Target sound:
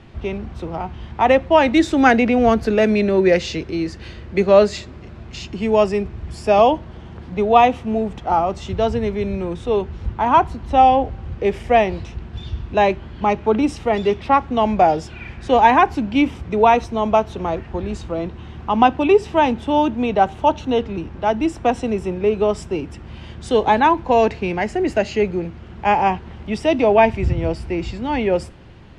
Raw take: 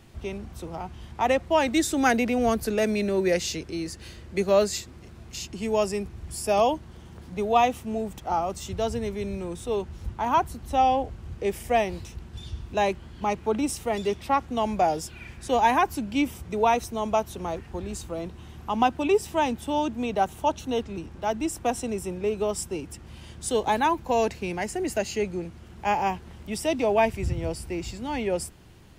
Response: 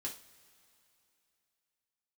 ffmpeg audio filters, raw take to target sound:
-filter_complex "[0:a]lowpass=3300,asplit=2[link_01][link_02];[1:a]atrim=start_sample=2205,adelay=19[link_03];[link_02][link_03]afir=irnorm=-1:irlink=0,volume=-18.5dB[link_04];[link_01][link_04]amix=inputs=2:normalize=0,volume=8.5dB"

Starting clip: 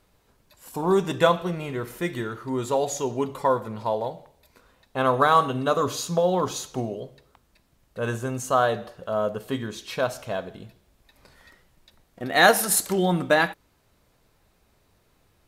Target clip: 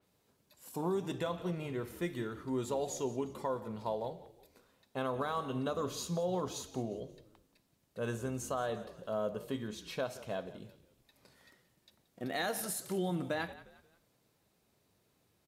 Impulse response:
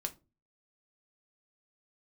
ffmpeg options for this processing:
-filter_complex "[0:a]equalizer=frequency=1300:width_type=o:width=2.3:gain=-5.5,alimiter=limit=-19.5dB:level=0:latency=1:release=196,highpass=120,asplit=4[link_01][link_02][link_03][link_04];[link_02]adelay=177,afreqshift=-47,volume=-17dB[link_05];[link_03]adelay=354,afreqshift=-94,volume=-25.6dB[link_06];[link_04]adelay=531,afreqshift=-141,volume=-34.3dB[link_07];[link_01][link_05][link_06][link_07]amix=inputs=4:normalize=0,adynamicequalizer=threshold=0.00282:dfrequency=4200:dqfactor=0.7:tfrequency=4200:tqfactor=0.7:attack=5:release=100:ratio=0.375:range=2:mode=cutabove:tftype=highshelf,volume=-6dB"

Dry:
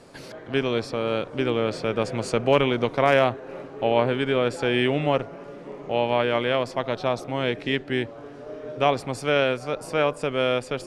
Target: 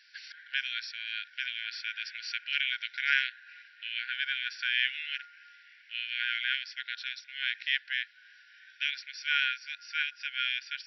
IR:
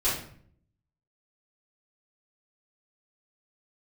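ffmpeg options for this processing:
-af "afftfilt=real='re*between(b*sr/4096,1400,5800)':imag='im*between(b*sr/4096,1400,5800)':win_size=4096:overlap=0.75"

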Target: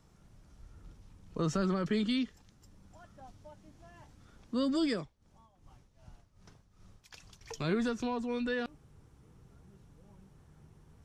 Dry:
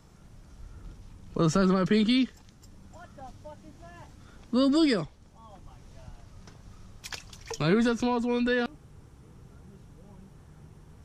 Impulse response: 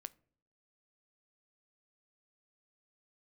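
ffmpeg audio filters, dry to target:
-filter_complex "[0:a]asettb=1/sr,asplit=3[link_01][link_02][link_03];[link_01]atrim=end=4.964[link_04];[link_02]atrim=start=4.96:end=7.41,asetpts=PTS-STARTPTS,afade=type=in:duration=0.004:curve=qsin,afade=type=out:start_time=2.446:duration=0.004:curve=qsin,tremolo=f=2.6:d=0.76[link_05];[link_03]atrim=start=7.406[link_06];[link_04][link_05]acrossfade=duration=0.004:curve1=hsin:curve2=qsin[link_07];[link_07][link_06]acrossfade=duration=0.004:curve1=qsin:curve2=hsin,volume=-7.5dB"

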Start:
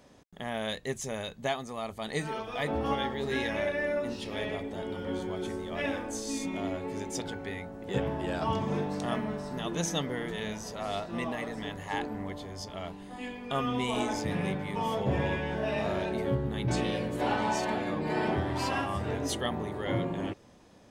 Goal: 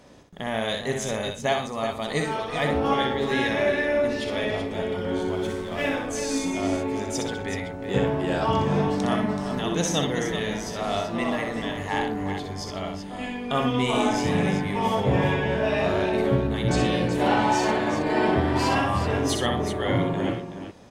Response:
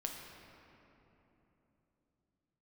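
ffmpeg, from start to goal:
-filter_complex "[0:a]highshelf=frequency=11000:gain=-5.5,asettb=1/sr,asplit=3[link_01][link_02][link_03];[link_01]atrim=end=5.294[link_04];[link_02]atrim=start=5.29:end=5.89,asetpts=PTS-STARTPTS,afade=type=in:duration=0.004:curve=qsin,afade=type=out:start_time=0.596:duration=0.004:curve=qsin,aeval=exprs='sgn(val(0))*max(abs(val(0))-0.00335,0)':channel_layout=same[link_05];[link_03]atrim=start=5.886[link_06];[link_04][link_05]acrossfade=duration=0.004:curve1=hsin:curve2=qsin[link_07];[link_07][link_06]acrossfade=duration=0.004:curve1=qsin:curve2=hsin,aecho=1:1:62|119|378:0.562|0.15|0.355,volume=6dB"

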